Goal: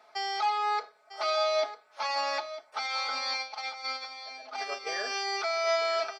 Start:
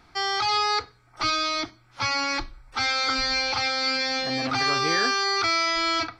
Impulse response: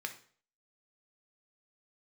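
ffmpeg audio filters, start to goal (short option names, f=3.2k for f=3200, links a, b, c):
-filter_complex "[0:a]aecho=1:1:4.7:0.7,asplit=3[a][b][c];[a]afade=t=out:st=3.36:d=0.02[d];[b]agate=range=-18dB:threshold=-21dB:ratio=16:detection=peak,afade=t=in:st=3.36:d=0.02,afade=t=out:st=4.86:d=0.02[e];[c]afade=t=in:st=4.86:d=0.02[f];[d][e][f]amix=inputs=3:normalize=0,alimiter=limit=-18dB:level=0:latency=1:release=60,highpass=f=600:t=q:w=5.3,aecho=1:1:950:0.224,volume=-7dB"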